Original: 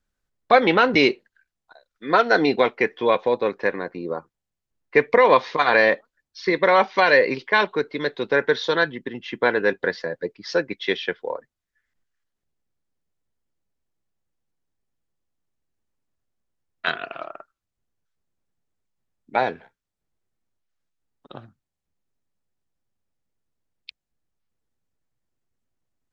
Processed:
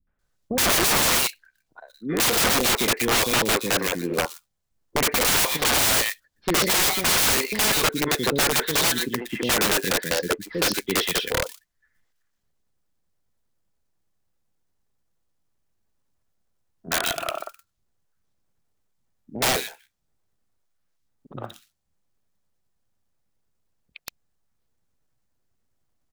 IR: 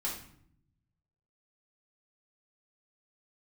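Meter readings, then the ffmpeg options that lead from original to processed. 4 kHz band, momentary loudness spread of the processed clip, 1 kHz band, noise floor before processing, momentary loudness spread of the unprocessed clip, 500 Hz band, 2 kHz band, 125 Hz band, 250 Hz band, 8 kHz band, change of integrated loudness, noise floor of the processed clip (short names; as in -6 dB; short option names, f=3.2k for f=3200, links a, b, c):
+8.0 dB, 11 LU, -5.0 dB, -84 dBFS, 15 LU, -7.0 dB, -3.0 dB, +4.5 dB, -1.5 dB, n/a, -0.5 dB, -74 dBFS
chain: -filter_complex "[0:a]acrusher=bits=4:mode=log:mix=0:aa=0.000001,acrossover=split=320|2500[a][b][c];[b]adelay=70[d];[c]adelay=190[e];[a][d][e]amix=inputs=3:normalize=0,aeval=exprs='(mod(11.2*val(0)+1,2)-1)/11.2':c=same,volume=6dB"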